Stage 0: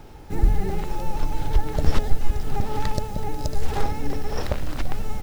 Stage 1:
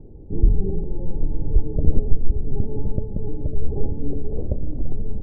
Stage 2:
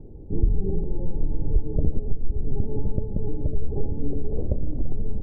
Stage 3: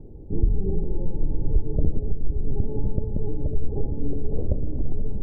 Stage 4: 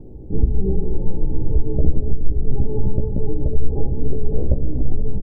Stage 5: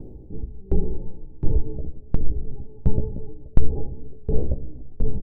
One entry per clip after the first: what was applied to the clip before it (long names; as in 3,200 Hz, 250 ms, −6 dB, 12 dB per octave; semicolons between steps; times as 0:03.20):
inverse Chebyshev low-pass filter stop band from 2,100 Hz, stop band 70 dB; level +2.5 dB
downward compressor 6 to 1, threshold −14 dBFS, peak gain reduction 9 dB
delay with a low-pass on its return 238 ms, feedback 78%, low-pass 550 Hz, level −14 dB
double-tracking delay 16 ms −4 dB; level +3.5 dB
tremolo with a ramp in dB decaying 1.4 Hz, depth 29 dB; level +2.5 dB